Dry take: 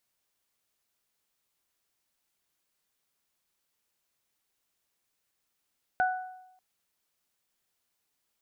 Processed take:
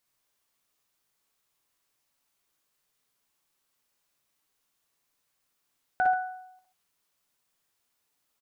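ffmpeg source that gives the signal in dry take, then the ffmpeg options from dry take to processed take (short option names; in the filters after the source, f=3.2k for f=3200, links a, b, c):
-f lavfi -i "aevalsrc='0.0794*pow(10,-3*t/0.89)*sin(2*PI*742*t)+0.0562*pow(10,-3*t/0.6)*sin(2*PI*1484*t)':d=0.59:s=44100"
-filter_complex "[0:a]equalizer=f=1.1k:t=o:w=0.37:g=3.5,asplit=2[a][b];[b]adelay=16,volume=-13dB[c];[a][c]amix=inputs=2:normalize=0,aecho=1:1:55|62|134:0.501|0.562|0.251"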